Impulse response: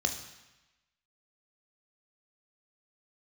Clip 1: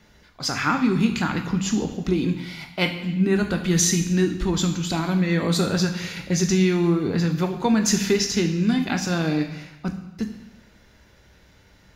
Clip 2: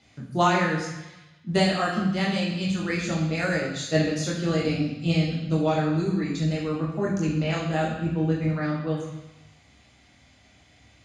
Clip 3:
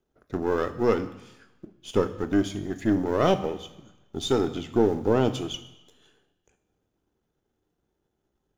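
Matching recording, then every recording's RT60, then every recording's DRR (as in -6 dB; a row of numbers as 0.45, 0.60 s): 1; 1.0, 1.0, 1.0 s; 4.5, -3.5, 10.0 dB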